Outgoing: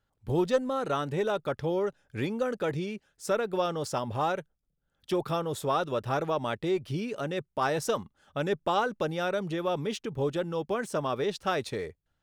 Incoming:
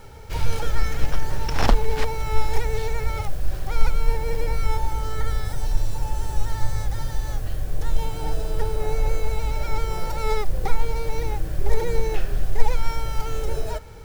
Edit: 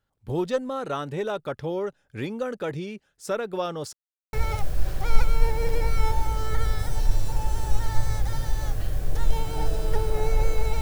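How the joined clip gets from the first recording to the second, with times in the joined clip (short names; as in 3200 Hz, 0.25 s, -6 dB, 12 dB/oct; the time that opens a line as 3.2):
outgoing
3.93–4.33 mute
4.33 switch to incoming from 2.99 s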